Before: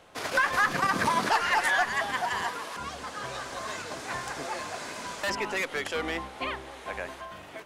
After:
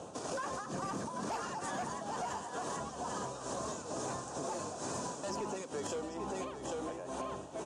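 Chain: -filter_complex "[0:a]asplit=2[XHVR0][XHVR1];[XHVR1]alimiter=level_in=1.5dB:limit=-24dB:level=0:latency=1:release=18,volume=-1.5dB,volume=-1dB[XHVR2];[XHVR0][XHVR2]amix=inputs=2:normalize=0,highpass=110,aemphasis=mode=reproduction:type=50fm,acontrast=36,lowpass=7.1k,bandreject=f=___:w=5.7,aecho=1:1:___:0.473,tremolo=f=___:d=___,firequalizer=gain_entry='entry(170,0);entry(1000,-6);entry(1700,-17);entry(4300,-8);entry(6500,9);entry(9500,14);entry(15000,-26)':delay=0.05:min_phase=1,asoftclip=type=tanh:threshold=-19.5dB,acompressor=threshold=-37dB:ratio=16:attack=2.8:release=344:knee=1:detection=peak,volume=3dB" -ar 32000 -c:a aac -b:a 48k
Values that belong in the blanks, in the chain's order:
2.1k, 792, 2.2, 0.83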